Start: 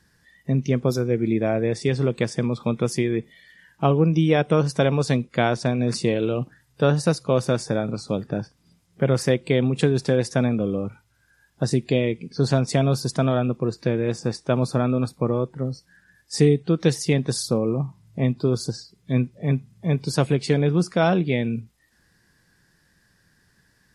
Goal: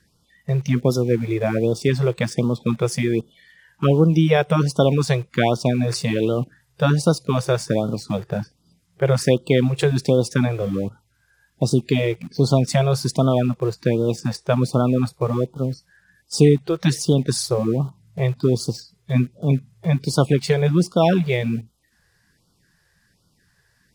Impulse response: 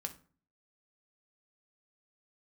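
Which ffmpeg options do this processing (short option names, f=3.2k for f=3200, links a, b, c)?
-filter_complex "[0:a]asplit=2[a][b];[b]aeval=exprs='val(0)*gte(abs(val(0)),0.0224)':c=same,volume=-6.5dB[c];[a][c]amix=inputs=2:normalize=0,afftfilt=real='re*(1-between(b*sr/1024,220*pow(2100/220,0.5+0.5*sin(2*PI*1.3*pts/sr))/1.41,220*pow(2100/220,0.5+0.5*sin(2*PI*1.3*pts/sr))*1.41))':imag='im*(1-between(b*sr/1024,220*pow(2100/220,0.5+0.5*sin(2*PI*1.3*pts/sr))/1.41,220*pow(2100/220,0.5+0.5*sin(2*PI*1.3*pts/sr))*1.41))':win_size=1024:overlap=0.75"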